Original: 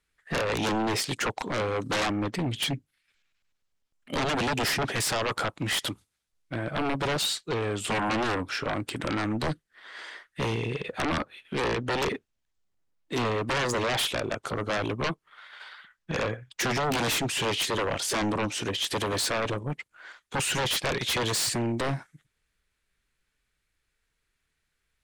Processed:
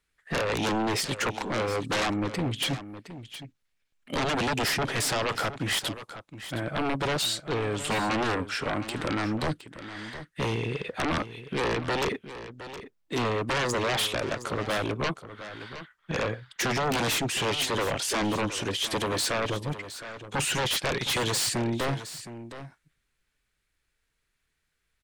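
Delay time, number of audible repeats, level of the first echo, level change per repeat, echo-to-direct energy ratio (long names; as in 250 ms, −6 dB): 715 ms, 1, −13.0 dB, repeats not evenly spaced, −13.0 dB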